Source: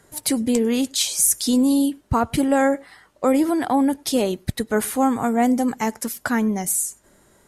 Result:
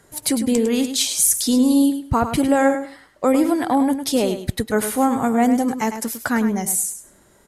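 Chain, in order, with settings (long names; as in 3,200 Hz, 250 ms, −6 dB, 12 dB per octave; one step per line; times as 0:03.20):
repeating echo 104 ms, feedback 18%, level −9.5 dB
level +1 dB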